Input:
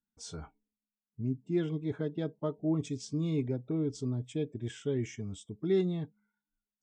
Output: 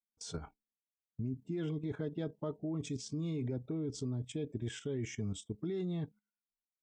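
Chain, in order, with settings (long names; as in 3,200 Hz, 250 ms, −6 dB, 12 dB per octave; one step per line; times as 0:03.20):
noise gate −53 dBFS, range −18 dB
brickwall limiter −26.5 dBFS, peak gain reduction 7.5 dB
output level in coarse steps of 10 dB
level +4 dB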